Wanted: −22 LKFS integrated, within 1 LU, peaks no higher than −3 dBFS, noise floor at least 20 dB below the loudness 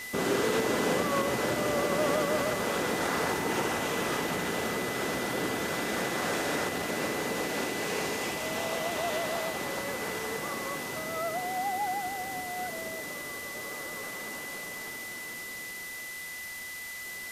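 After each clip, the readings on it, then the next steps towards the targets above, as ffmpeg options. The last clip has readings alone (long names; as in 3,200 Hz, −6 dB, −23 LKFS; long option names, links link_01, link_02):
interfering tone 2,000 Hz; level of the tone −39 dBFS; background noise floor −40 dBFS; target noise floor −51 dBFS; integrated loudness −31.0 LKFS; sample peak −15.5 dBFS; target loudness −22.0 LKFS
→ -af "bandreject=frequency=2000:width=30"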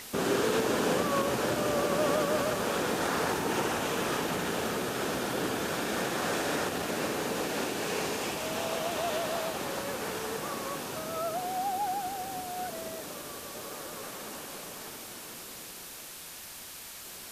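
interfering tone none found; background noise floor −45 dBFS; target noise floor −52 dBFS
→ -af "afftdn=noise_reduction=7:noise_floor=-45"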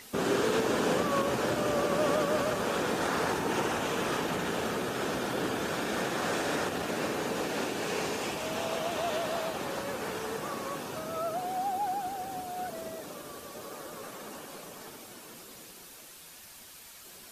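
background noise floor −50 dBFS; target noise floor −52 dBFS
→ -af "afftdn=noise_reduction=6:noise_floor=-50"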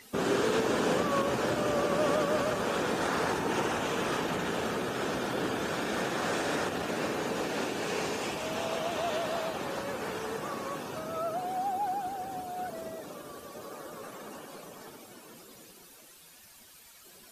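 background noise floor −54 dBFS; integrated loudness −31.5 LKFS; sample peak −15.5 dBFS; target loudness −22.0 LKFS
→ -af "volume=9.5dB"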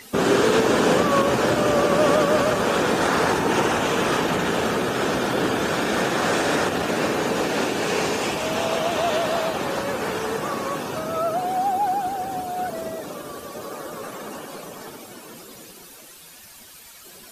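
integrated loudness −22.0 LKFS; sample peak −6.0 dBFS; background noise floor −45 dBFS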